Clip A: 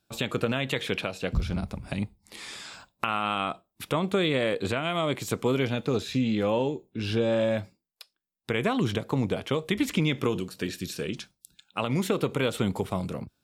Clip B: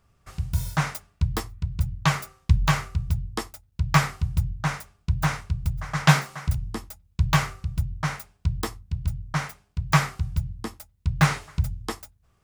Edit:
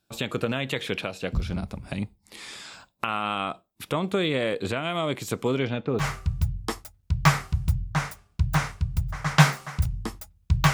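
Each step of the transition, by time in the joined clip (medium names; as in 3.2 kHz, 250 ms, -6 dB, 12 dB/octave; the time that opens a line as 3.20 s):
clip A
5.48–6.06 s: low-pass 9.7 kHz -> 1.2 kHz
6.02 s: go over to clip B from 2.71 s, crossfade 0.08 s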